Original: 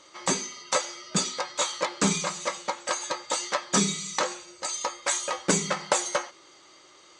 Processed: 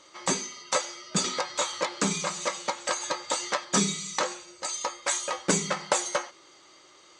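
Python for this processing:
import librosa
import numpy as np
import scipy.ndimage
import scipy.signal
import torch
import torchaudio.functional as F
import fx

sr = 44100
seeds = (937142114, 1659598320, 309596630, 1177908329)

y = fx.band_squash(x, sr, depth_pct=70, at=(1.24, 3.65))
y = F.gain(torch.from_numpy(y), -1.0).numpy()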